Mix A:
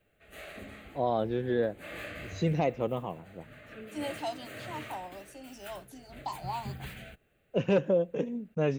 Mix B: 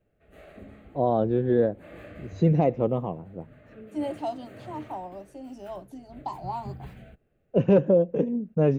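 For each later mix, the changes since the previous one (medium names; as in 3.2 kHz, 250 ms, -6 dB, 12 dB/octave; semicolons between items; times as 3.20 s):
background -6.5 dB; master: add tilt shelf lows +8.5 dB, about 1.3 kHz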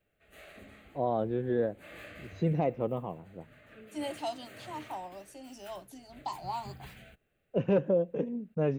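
first voice: add low-pass 1.1 kHz 6 dB/octave; master: add tilt shelf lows -8.5 dB, about 1.3 kHz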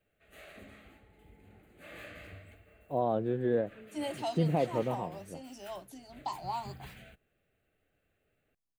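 first voice: entry +1.95 s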